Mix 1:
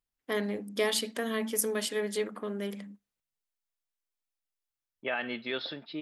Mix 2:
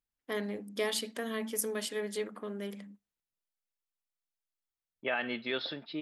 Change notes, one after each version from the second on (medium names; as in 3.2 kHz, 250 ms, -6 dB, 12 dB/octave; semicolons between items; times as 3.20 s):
first voice -4.0 dB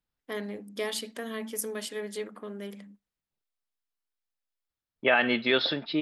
second voice +10.0 dB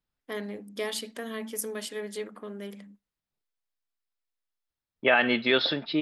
reverb: on, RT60 0.40 s